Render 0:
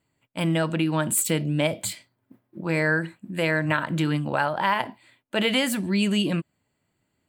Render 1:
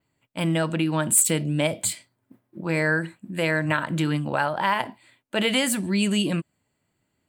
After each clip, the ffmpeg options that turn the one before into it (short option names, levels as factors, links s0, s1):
-af "adynamicequalizer=threshold=0.00562:dfrequency=8600:dqfactor=1.5:tfrequency=8600:tqfactor=1.5:attack=5:release=100:ratio=0.375:range=3.5:mode=boostabove:tftype=bell"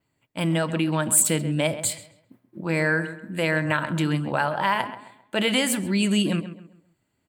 -filter_complex "[0:a]asplit=2[s0][s1];[s1]adelay=133,lowpass=f=2400:p=1,volume=0.251,asplit=2[s2][s3];[s3]adelay=133,lowpass=f=2400:p=1,volume=0.36,asplit=2[s4][s5];[s5]adelay=133,lowpass=f=2400:p=1,volume=0.36,asplit=2[s6][s7];[s7]adelay=133,lowpass=f=2400:p=1,volume=0.36[s8];[s0][s2][s4][s6][s8]amix=inputs=5:normalize=0"